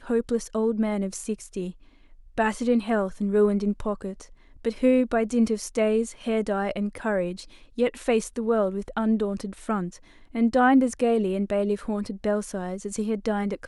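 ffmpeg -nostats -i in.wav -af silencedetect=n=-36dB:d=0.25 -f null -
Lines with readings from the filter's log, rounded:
silence_start: 1.71
silence_end: 2.38 | silence_duration: 0.67
silence_start: 4.23
silence_end: 4.65 | silence_duration: 0.41
silence_start: 7.43
silence_end: 7.78 | silence_duration: 0.35
silence_start: 9.96
silence_end: 10.35 | silence_duration: 0.39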